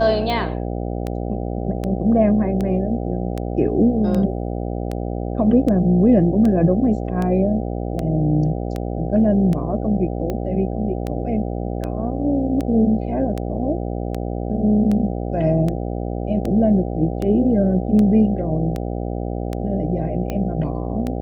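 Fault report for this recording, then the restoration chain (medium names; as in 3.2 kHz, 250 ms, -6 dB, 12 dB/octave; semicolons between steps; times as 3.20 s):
buzz 60 Hz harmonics 13 -25 dBFS
tick 78 rpm -13 dBFS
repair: de-click; de-hum 60 Hz, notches 13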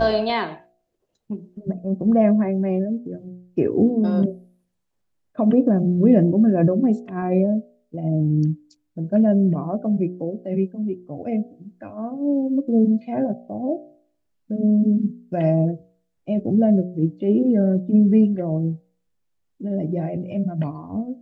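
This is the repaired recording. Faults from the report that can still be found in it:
nothing left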